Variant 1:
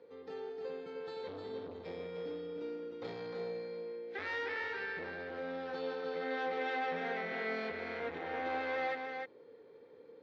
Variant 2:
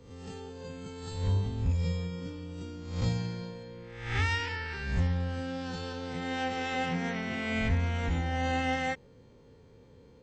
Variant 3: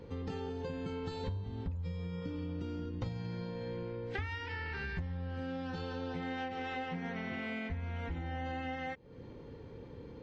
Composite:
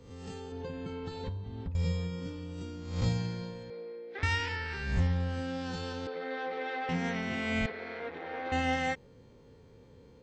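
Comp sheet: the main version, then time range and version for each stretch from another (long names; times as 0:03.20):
2
0:00.52–0:01.75: punch in from 3
0:03.70–0:04.23: punch in from 1
0:06.07–0:06.89: punch in from 1
0:07.66–0:08.52: punch in from 1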